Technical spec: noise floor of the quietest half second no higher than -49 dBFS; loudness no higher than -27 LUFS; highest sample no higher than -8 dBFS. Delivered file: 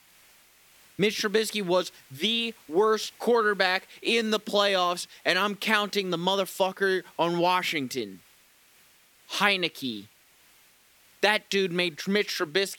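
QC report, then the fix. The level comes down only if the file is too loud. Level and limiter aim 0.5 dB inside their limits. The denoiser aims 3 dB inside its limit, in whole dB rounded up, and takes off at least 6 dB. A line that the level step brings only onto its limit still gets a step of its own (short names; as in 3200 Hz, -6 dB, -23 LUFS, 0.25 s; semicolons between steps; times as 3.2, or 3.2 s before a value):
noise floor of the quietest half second -60 dBFS: OK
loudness -26.0 LUFS: fail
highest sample -6.0 dBFS: fail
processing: gain -1.5 dB; limiter -8.5 dBFS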